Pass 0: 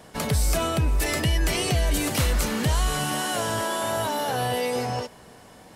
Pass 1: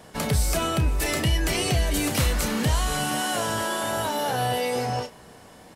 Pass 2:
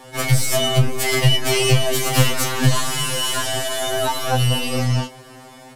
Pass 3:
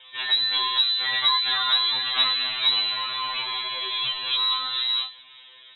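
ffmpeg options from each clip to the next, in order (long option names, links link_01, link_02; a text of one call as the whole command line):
ffmpeg -i in.wav -filter_complex "[0:a]asplit=2[link_01][link_02];[link_02]adelay=31,volume=-10.5dB[link_03];[link_01][link_03]amix=inputs=2:normalize=0" out.wav
ffmpeg -i in.wav -af "aeval=exprs='0.251*(cos(1*acos(clip(val(0)/0.251,-1,1)))-cos(1*PI/2))+0.0316*(cos(4*acos(clip(val(0)/0.251,-1,1)))-cos(4*PI/2))':channel_layout=same,afftfilt=real='re*2.45*eq(mod(b,6),0)':imag='im*2.45*eq(mod(b,6),0)':win_size=2048:overlap=0.75,volume=8.5dB" out.wav
ffmpeg -i in.wav -af "equalizer=frequency=2200:width_type=o:width=0.77:gain=2.5,lowpass=frequency=3400:width_type=q:width=0.5098,lowpass=frequency=3400:width_type=q:width=0.6013,lowpass=frequency=3400:width_type=q:width=0.9,lowpass=frequency=3400:width_type=q:width=2.563,afreqshift=-4000,volume=-6.5dB" out.wav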